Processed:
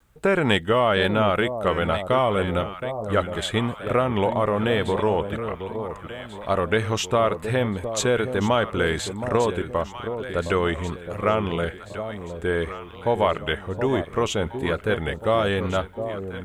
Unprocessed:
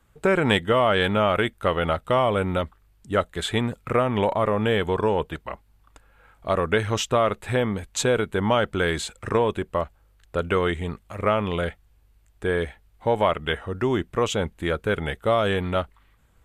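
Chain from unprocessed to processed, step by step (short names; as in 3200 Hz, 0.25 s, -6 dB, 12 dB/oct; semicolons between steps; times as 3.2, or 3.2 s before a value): echo with dull and thin repeats by turns 0.717 s, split 840 Hz, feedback 64%, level -8 dB; vibrato 1.1 Hz 38 cents; requantised 12-bit, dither none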